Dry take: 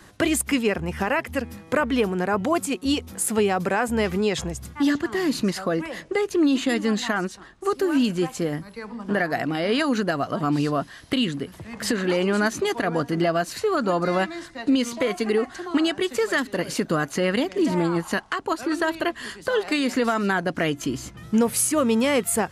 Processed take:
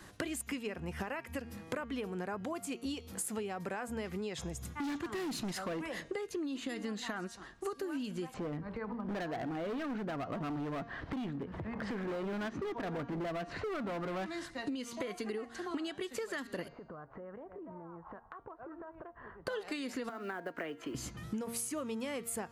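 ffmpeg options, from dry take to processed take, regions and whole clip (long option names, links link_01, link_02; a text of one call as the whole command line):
ffmpeg -i in.wav -filter_complex "[0:a]asettb=1/sr,asplit=3[link_01][link_02][link_03];[link_01]atrim=end=4.554[link_04];[link_02]atrim=start=4.55:end=5.95,asetpts=PTS-STARTPTS,afade=type=in:duration=0.004:curve=qsin,afade=type=out:start_time=1.396:duration=0.004:curve=qsin,bandreject=frequency=4600:width=12,asoftclip=type=hard:threshold=-25dB[link_05];[link_03]atrim=start=5.946[link_06];[link_04][link_05]acrossfade=duration=0.004:curve1=hsin:curve2=qsin[link_07];[link_07][link_06]acrossfade=duration=0.004:curve1=qsin:curve2=hsin,asettb=1/sr,asplit=3[link_08][link_09][link_10];[link_08]atrim=end=8.344[link_11];[link_09]atrim=start=8.34:end=14.26,asetpts=PTS-STARTPTS,afade=type=in:duration=0.004:curve=qsin,afade=type=out:start_time=5.916:duration=0.004:curve=qsin,lowpass=1500,acompressor=mode=upward:threshold=-26dB:ratio=2.5:attack=3.2:release=140:knee=2.83:detection=peak,asoftclip=type=hard:threshold=-25dB[link_12];[link_10]atrim=start=14.256[link_13];[link_11][link_12]acrossfade=duration=0.004:curve1=hsin:curve2=qsin[link_14];[link_14][link_13]acrossfade=duration=0.004:curve1=qsin:curve2=hsin,asettb=1/sr,asplit=3[link_15][link_16][link_17];[link_15]atrim=end=16.684[link_18];[link_16]atrim=start=16.68:end=19.47,asetpts=PTS-STARTPTS,afade=type=in:duration=0.004:curve=qsin,afade=type=out:start_time=2.786:duration=0.004:curve=qsin,lowpass=frequency=1200:width=0.5412,lowpass=frequency=1200:width=1.3066,equalizer=frequency=250:width_type=o:width=1.1:gain=-13,acompressor=threshold=-39dB:ratio=20:attack=3.2:release=140:knee=1:detection=peak[link_19];[link_17]atrim=start=19.466[link_20];[link_18][link_19]acrossfade=duration=0.004:curve1=hsin:curve2=qsin[link_21];[link_21][link_20]acrossfade=duration=0.004:curve1=qsin:curve2=hsin,asettb=1/sr,asplit=3[link_22][link_23][link_24];[link_22]atrim=end=20.094[link_25];[link_23]atrim=start=20.09:end=20.95,asetpts=PTS-STARTPTS,afade=type=in:duration=0.004:curve=qsin,afade=type=out:start_time=0.856:duration=0.004:curve=qsin,acrossover=split=330 2700:gain=0.126 1 0.224[link_26][link_27][link_28];[link_26][link_27][link_28]amix=inputs=3:normalize=0,acrusher=bits=7:mode=log:mix=0:aa=0.000001,acrossover=split=510|1200|3400[link_29][link_30][link_31][link_32];[link_29]acompressor=threshold=-32dB:ratio=3[link_33];[link_30]acompressor=threshold=-40dB:ratio=3[link_34];[link_31]acompressor=threshold=-36dB:ratio=3[link_35];[link_32]acompressor=threshold=-58dB:ratio=3[link_36];[link_33][link_34][link_35][link_36]amix=inputs=4:normalize=0[link_37];[link_24]atrim=start=20.946[link_38];[link_25][link_37]acrossfade=duration=0.004:curve1=hsin:curve2=qsin[link_39];[link_39][link_38]acrossfade=duration=0.004:curve1=qsin:curve2=hsin,bandreject=frequency=232.7:width_type=h:width=4,bandreject=frequency=465.4:width_type=h:width=4,bandreject=frequency=698.1:width_type=h:width=4,bandreject=frequency=930.8:width_type=h:width=4,bandreject=frequency=1163.5:width_type=h:width=4,bandreject=frequency=1396.2:width_type=h:width=4,bandreject=frequency=1628.9:width_type=h:width=4,bandreject=frequency=1861.6:width_type=h:width=4,bandreject=frequency=2094.3:width_type=h:width=4,bandreject=frequency=2327:width_type=h:width=4,bandreject=frequency=2559.7:width_type=h:width=4,bandreject=frequency=2792.4:width_type=h:width=4,bandreject=frequency=3025.1:width_type=h:width=4,bandreject=frequency=3257.8:width_type=h:width=4,bandreject=frequency=3490.5:width_type=h:width=4,bandreject=frequency=3723.2:width_type=h:width=4,bandreject=frequency=3955.9:width_type=h:width=4,bandreject=frequency=4188.6:width_type=h:width=4,bandreject=frequency=4421.3:width_type=h:width=4,bandreject=frequency=4654:width_type=h:width=4,bandreject=frequency=4886.7:width_type=h:width=4,bandreject=frequency=5119.4:width_type=h:width=4,bandreject=frequency=5352.1:width_type=h:width=4,bandreject=frequency=5584.8:width_type=h:width=4,bandreject=frequency=5817.5:width_type=h:width=4,bandreject=frequency=6050.2:width_type=h:width=4,bandreject=frequency=6282.9:width_type=h:width=4,bandreject=frequency=6515.6:width_type=h:width=4,bandreject=frequency=6748.3:width_type=h:width=4,bandreject=frequency=6981:width_type=h:width=4,bandreject=frequency=7213.7:width_type=h:width=4,acompressor=threshold=-31dB:ratio=10,volume=-4.5dB" out.wav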